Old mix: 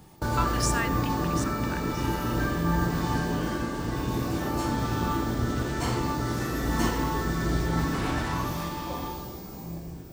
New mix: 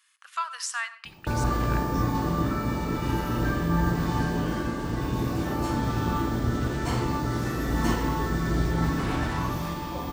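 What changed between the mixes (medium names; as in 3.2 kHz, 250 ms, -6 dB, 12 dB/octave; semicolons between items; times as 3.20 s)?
background: entry +1.05 s; master: add tone controls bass +2 dB, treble -3 dB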